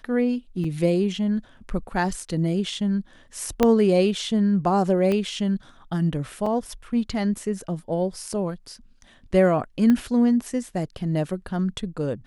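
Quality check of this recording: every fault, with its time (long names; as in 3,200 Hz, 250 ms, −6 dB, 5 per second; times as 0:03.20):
0:00.64: drop-out 4 ms
0:03.63: click −6 dBFS
0:05.12: click −14 dBFS
0:06.46: drop-out 4.2 ms
0:08.32: drop-out 2.2 ms
0:09.90: click −12 dBFS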